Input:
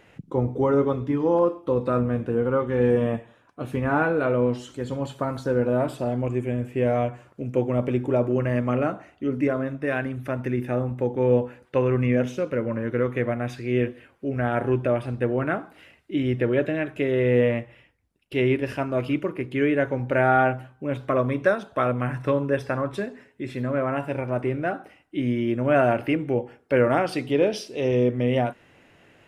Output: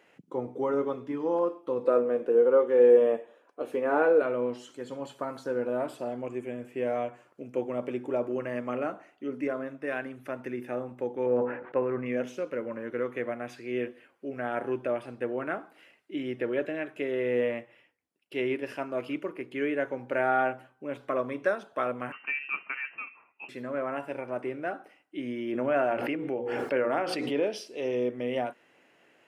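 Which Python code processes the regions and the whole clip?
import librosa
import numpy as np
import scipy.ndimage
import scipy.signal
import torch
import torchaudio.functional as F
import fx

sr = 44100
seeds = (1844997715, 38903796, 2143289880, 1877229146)

y = fx.chain(x, sr, fx.highpass(hz=220.0, slope=12),
    fx.peak_eq(hz=480.0, db=11.0, octaves=0.87), at=(1.84, 4.22))
y = fx.chain(y, sr, fx.lowpass(hz=2000.0, slope=24),
    fx.transient(attack_db=2, sustain_db=9),
    fx.sustainer(db_per_s=82.0), at=(11.26, 12.06))
y = fx.chain(y, sr, fx.highpass(hz=590.0, slope=6),
    fx.freq_invert(carrier_hz=2900), at=(22.12, 23.49))
y = fx.chain(y, sr, fx.high_shelf(hz=5000.0, db=-8.0),
    fx.hum_notches(base_hz=60, count=9),
    fx.pre_swell(db_per_s=23.0), at=(25.52, 27.44))
y = scipy.signal.sosfilt(scipy.signal.butter(2, 280.0, 'highpass', fs=sr, output='sos'), y)
y = fx.notch(y, sr, hz=3700.0, q=21.0)
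y = y * librosa.db_to_amplitude(-6.0)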